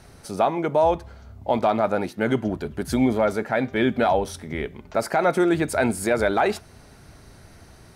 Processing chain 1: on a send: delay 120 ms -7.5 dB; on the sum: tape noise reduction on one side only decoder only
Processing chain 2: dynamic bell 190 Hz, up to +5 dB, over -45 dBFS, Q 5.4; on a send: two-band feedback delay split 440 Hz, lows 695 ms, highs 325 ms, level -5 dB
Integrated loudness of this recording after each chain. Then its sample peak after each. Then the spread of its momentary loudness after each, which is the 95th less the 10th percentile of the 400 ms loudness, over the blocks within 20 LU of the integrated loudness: -22.5 LUFS, -22.0 LUFS; -7.0 dBFS, -6.0 dBFS; 10 LU, 8 LU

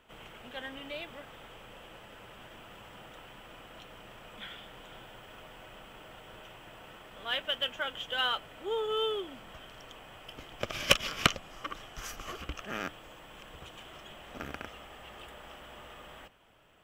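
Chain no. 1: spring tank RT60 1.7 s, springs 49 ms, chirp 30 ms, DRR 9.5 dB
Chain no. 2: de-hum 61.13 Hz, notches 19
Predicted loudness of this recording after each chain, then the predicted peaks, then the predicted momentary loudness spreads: -34.0 LUFS, -34.0 LUFS; -9.0 dBFS, -9.0 dBFS; 20 LU, 20 LU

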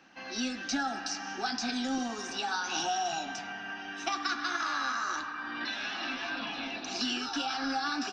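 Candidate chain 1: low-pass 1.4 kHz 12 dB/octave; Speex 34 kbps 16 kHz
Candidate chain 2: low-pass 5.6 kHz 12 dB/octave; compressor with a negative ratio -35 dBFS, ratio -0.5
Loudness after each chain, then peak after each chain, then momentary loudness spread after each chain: -36.5 LUFS, -35.5 LUFS; -21.5 dBFS, -19.5 dBFS; 8 LU, 4 LU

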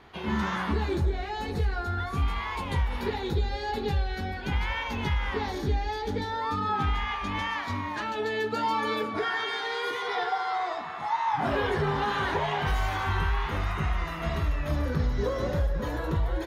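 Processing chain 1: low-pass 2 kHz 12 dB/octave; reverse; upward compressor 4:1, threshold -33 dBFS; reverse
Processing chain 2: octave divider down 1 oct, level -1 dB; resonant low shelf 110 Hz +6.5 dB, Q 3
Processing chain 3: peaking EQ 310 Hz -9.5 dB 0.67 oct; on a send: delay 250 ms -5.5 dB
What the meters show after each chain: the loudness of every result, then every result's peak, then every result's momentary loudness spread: -30.0 LUFS, -23.5 LUFS, -29.0 LUFS; -17.0 dBFS, -4.5 dBFS, -15.0 dBFS; 4 LU, 9 LU, 4 LU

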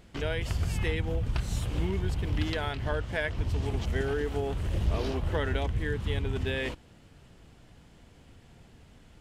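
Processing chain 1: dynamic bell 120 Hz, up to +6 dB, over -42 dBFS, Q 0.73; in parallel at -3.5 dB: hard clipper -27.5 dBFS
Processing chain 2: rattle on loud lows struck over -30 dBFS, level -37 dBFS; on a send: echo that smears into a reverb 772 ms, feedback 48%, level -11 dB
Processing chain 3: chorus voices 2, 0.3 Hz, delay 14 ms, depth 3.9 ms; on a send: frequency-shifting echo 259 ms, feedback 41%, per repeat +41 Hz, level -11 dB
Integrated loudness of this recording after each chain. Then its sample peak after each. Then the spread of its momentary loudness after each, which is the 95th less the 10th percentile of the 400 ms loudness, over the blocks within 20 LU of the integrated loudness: -25.0 LUFS, -31.0 LUFS, -33.5 LUFS; -12.0 dBFS, -14.0 dBFS, -18.0 dBFS; 2 LU, 16 LU, 4 LU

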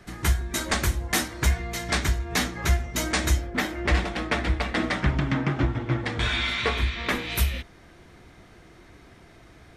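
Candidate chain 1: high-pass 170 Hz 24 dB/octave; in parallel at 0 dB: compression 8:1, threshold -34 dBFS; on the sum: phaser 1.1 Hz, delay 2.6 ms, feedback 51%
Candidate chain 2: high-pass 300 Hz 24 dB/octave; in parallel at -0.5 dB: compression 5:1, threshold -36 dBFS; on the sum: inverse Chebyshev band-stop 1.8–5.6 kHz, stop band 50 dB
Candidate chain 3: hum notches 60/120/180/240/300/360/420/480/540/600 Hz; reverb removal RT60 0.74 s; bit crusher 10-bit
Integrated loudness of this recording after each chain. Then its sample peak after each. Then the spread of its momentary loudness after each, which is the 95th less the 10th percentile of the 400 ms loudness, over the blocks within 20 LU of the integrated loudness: -24.5 LUFS, -32.5 LUFS, -28.0 LUFS; -6.5 dBFS, -14.0 dBFS, -12.0 dBFS; 5 LU, 21 LU, 4 LU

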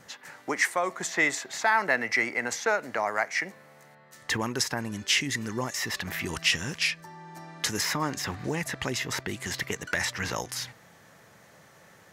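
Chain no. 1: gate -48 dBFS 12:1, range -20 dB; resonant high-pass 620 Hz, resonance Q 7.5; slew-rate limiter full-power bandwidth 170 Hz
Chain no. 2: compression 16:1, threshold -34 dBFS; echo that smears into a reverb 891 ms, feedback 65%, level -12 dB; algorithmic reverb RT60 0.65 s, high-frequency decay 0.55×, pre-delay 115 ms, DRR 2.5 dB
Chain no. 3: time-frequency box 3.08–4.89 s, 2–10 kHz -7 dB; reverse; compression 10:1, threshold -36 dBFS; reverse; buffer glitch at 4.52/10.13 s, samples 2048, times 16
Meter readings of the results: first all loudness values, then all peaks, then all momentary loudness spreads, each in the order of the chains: -25.0 LUFS, -37.0 LUFS, -40.0 LUFS; -6.5 dBFS, -17.5 dBFS, -23.0 dBFS; 15 LU, 9 LU, 15 LU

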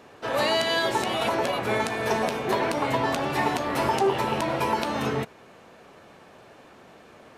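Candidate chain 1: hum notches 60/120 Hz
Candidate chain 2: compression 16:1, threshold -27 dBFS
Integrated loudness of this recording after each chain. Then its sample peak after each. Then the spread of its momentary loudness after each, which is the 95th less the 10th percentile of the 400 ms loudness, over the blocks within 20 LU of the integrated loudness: -25.5 LUFS, -31.5 LUFS; -8.0 dBFS, -13.0 dBFS; 4 LU, 20 LU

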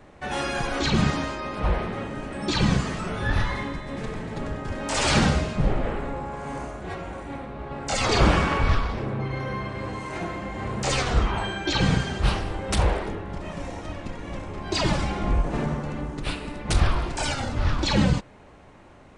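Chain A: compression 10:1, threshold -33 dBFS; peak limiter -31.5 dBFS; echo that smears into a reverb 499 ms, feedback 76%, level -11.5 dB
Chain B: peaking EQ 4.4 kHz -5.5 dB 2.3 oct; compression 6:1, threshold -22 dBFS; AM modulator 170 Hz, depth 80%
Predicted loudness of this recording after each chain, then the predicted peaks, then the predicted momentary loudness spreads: -40.5 LUFS, -34.0 LUFS; -28.0 dBFS, -15.5 dBFS; 2 LU, 8 LU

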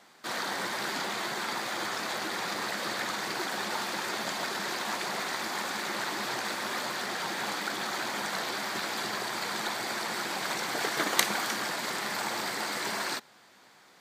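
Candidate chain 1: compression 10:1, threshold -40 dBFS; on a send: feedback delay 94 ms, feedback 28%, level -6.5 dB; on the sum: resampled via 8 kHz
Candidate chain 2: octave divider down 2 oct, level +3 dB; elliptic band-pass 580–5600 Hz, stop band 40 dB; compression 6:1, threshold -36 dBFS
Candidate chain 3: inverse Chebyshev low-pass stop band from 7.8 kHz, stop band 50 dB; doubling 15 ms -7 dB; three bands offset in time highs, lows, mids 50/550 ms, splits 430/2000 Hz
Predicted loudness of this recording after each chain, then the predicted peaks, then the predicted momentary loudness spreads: -42.5 LUFS, -38.0 LUFS, -34.5 LUFS; -29.5 dBFS, -19.5 dBFS, -15.0 dBFS; 1 LU, 0 LU, 3 LU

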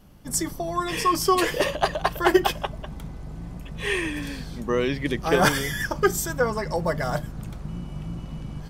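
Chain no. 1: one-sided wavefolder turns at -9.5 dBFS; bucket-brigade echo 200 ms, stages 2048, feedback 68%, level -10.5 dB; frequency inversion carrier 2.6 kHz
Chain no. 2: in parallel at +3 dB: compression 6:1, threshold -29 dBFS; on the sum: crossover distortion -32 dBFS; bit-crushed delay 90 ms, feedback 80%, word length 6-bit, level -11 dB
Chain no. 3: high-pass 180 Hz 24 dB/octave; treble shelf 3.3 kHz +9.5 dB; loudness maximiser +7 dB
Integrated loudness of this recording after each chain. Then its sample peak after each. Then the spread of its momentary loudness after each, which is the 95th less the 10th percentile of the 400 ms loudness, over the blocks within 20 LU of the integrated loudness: -23.0 LUFS, -22.5 LUFS, -16.0 LUFS; -5.0 dBFS, -3.0 dBFS, -1.0 dBFS; 11 LU, 13 LU, 21 LU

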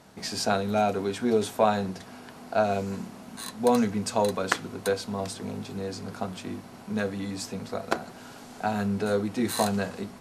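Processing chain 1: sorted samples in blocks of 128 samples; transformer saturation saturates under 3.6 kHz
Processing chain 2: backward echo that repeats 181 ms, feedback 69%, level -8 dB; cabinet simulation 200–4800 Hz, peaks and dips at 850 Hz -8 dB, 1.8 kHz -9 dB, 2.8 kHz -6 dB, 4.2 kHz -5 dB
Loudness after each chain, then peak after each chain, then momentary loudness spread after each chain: -32.5 LUFS, -30.0 LUFS; -3.0 dBFS, -8.0 dBFS; 10 LU, 11 LU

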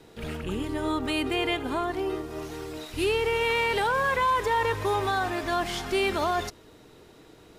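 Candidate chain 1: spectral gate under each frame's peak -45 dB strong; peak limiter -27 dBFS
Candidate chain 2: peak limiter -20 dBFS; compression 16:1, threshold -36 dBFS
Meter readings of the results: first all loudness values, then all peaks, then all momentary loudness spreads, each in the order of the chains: -35.0 LUFS, -40.0 LUFS; -27.0 dBFS, -27.5 dBFS; 8 LU, 8 LU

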